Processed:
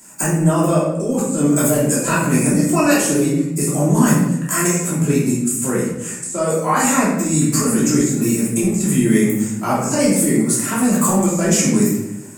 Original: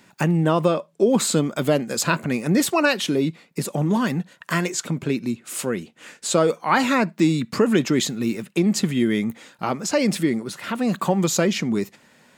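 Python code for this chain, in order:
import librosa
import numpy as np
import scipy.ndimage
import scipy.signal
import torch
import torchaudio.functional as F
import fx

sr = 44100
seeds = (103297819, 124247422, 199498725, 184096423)

y = fx.high_shelf_res(x, sr, hz=5500.0, db=14.0, q=3.0)
y = fx.over_compress(y, sr, threshold_db=-20.0, ratio=-1.0)
y = fx.room_shoebox(y, sr, seeds[0], volume_m3=300.0, walls='mixed', distance_m=2.9)
y = y * librosa.db_to_amplitude(-5.5)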